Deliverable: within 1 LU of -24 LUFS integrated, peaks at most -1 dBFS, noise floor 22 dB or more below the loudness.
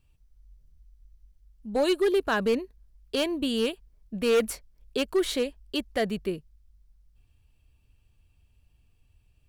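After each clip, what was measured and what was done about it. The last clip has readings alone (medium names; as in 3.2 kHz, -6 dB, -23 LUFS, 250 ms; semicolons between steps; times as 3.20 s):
clipped samples 0.9%; clipping level -18.0 dBFS; loudness -28.0 LUFS; peak level -18.0 dBFS; loudness target -24.0 LUFS
-> clip repair -18 dBFS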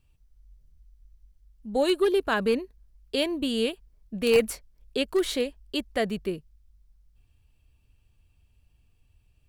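clipped samples 0.0%; loudness -27.0 LUFS; peak level -9.0 dBFS; loudness target -24.0 LUFS
-> trim +3 dB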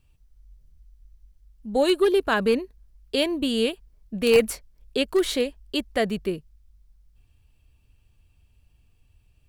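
loudness -24.0 LUFS; peak level -6.0 dBFS; noise floor -63 dBFS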